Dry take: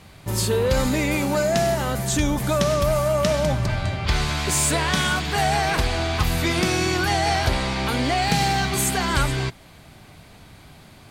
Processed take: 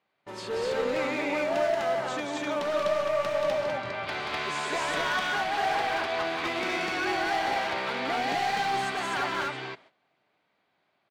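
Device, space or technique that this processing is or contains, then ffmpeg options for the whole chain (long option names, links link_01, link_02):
walkie-talkie: -filter_complex "[0:a]highpass=400,lowpass=3000,asoftclip=type=hard:threshold=-21.5dB,agate=range=-19dB:threshold=-47dB:ratio=16:detection=peak,asettb=1/sr,asplit=3[link_01][link_02][link_03];[link_01]atrim=end=2.024[link_04];[link_02]atrim=start=2.02:end=2.6,asetpts=PTS-STARTPTS,afade=type=in:duration=0.004:curve=qsin,afade=type=out:start_time=0.576:duration=0.004:curve=qsin,highpass=frequency=180:poles=1[link_05];[link_03]atrim=start=2.596[link_06];[link_04][link_05]acrossfade=duration=0.004:curve1=hsin:curve2=qsin[link_07];[link_07][link_06]acrossfade=duration=0.004:curve1=qsin:curve2=hsin,aecho=1:1:180.8|250.7:0.631|1,volume=-6dB"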